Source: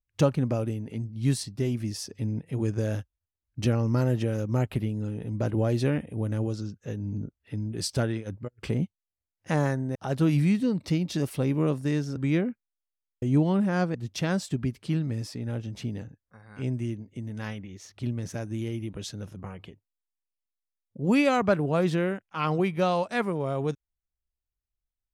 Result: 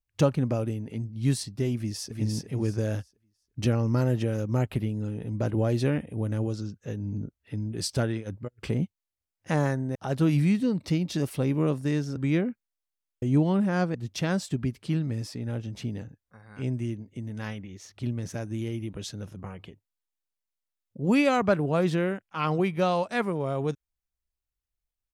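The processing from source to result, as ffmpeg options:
ffmpeg -i in.wav -filter_complex "[0:a]asplit=2[link_01][link_02];[link_02]afade=type=in:start_time=1.75:duration=0.01,afade=type=out:start_time=2.18:duration=0.01,aecho=0:1:350|700|1050|1400:0.707946|0.176986|0.0442466|0.0110617[link_03];[link_01][link_03]amix=inputs=2:normalize=0" out.wav

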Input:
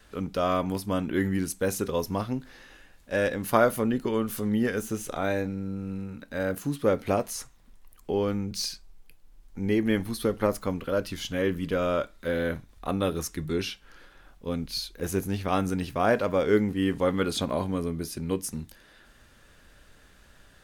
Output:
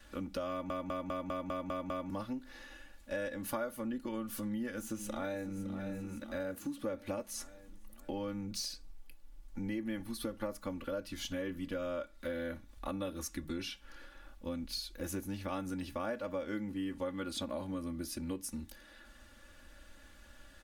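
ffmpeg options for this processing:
ffmpeg -i in.wav -filter_complex "[0:a]asplit=2[link_01][link_02];[link_02]afade=type=in:start_time=4.43:duration=0.01,afade=type=out:start_time=5.54:duration=0.01,aecho=0:1:560|1120|1680|2240|2800|3360:0.211349|0.116242|0.063933|0.0351632|0.0193397|0.0106369[link_03];[link_01][link_03]amix=inputs=2:normalize=0,asplit=9[link_04][link_05][link_06][link_07][link_08][link_09][link_10][link_11][link_12];[link_04]atrim=end=0.702[link_13];[link_05]atrim=start=0.498:end=0.702[link_14];[link_06]atrim=start=0.498:end=0.702[link_15];[link_07]atrim=start=0.498:end=0.702[link_16];[link_08]atrim=start=0.498:end=0.702[link_17];[link_09]atrim=start=0.498:end=0.702[link_18];[link_10]atrim=start=0.498:end=0.702[link_19];[link_11]atrim=start=0.498:end=0.702[link_20];[link_12]atrim=start=2.098[link_21];[link_13][link_14]acrossfade=duration=0.004:curve1=hsin:curve2=hsin[link_22];[link_22][link_15]acrossfade=duration=0.004:curve1=hsin:curve2=hsin[link_23];[link_23][link_16]acrossfade=duration=0.004:curve1=hsin:curve2=hsin[link_24];[link_24][link_17]acrossfade=duration=0.004:curve1=hsin:curve2=hsin[link_25];[link_25][link_18]acrossfade=duration=0.004:curve1=hsin:curve2=hsin[link_26];[link_26][link_19]acrossfade=duration=0.004:curve1=hsin:curve2=hsin[link_27];[link_27][link_20]acrossfade=duration=0.004:curve1=hsin:curve2=hsin[link_28];[link_28][link_21]acrossfade=duration=0.004:curve1=hsin:curve2=hsin,bandreject=frequency=410:width=12,aecho=1:1:3.5:0.78,acompressor=threshold=-33dB:ratio=4,volume=-4dB" out.wav

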